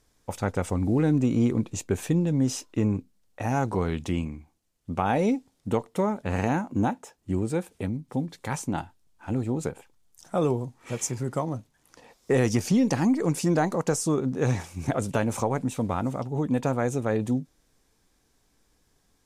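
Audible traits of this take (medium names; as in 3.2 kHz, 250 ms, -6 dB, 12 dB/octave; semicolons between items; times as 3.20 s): noise floor -68 dBFS; spectral tilt -6.5 dB/octave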